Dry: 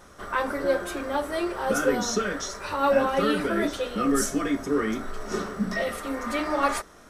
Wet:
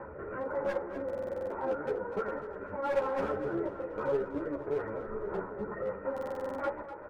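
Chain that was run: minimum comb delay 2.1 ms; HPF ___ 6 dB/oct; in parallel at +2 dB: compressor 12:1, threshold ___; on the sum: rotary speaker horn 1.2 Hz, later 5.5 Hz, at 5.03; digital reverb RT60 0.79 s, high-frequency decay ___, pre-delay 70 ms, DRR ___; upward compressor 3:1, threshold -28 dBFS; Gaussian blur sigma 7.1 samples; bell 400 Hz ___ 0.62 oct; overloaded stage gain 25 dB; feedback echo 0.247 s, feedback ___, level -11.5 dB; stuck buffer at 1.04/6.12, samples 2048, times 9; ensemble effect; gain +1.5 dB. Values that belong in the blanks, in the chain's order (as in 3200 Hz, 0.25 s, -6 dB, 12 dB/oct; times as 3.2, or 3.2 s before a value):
270 Hz, -36 dBFS, 1×, 19 dB, -2.5 dB, 41%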